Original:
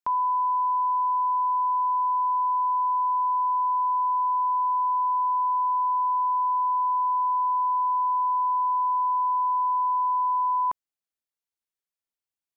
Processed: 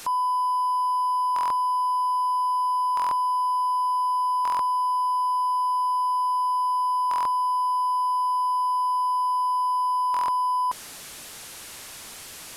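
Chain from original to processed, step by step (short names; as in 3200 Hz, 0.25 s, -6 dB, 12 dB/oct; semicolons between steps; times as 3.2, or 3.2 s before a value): delta modulation 64 kbps, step -33.5 dBFS; stuck buffer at 1.34/2.95/4.43/7.09/10.12, samples 1024, times 6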